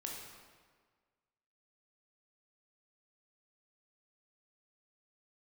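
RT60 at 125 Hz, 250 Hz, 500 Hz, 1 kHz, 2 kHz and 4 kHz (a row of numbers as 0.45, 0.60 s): 1.6, 1.6, 1.6, 1.6, 1.4, 1.2 s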